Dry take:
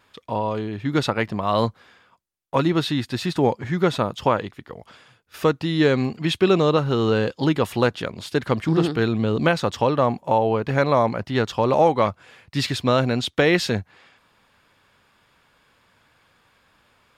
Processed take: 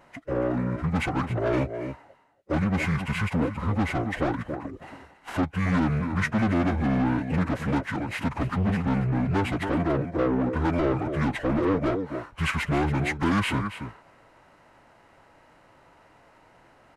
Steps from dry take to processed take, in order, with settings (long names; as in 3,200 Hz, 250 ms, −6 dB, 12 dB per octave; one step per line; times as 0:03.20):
running median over 5 samples
in parallel at +1 dB: downward compressor 12 to 1, threshold −31 dBFS, peak gain reduction 19.5 dB
on the sum: parametric band 100 Hz −14 dB 0.45 octaves
on a send: single-tap delay 282 ms −13 dB
on the sum: soft clipping −20 dBFS, distortion −8 dB
phase-vocoder stretch with locked phases 0.57×
dynamic equaliser 2,300 Hz, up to +4 dB, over −41 dBFS, Q 1
wrong playback speed 78 rpm record played at 45 rpm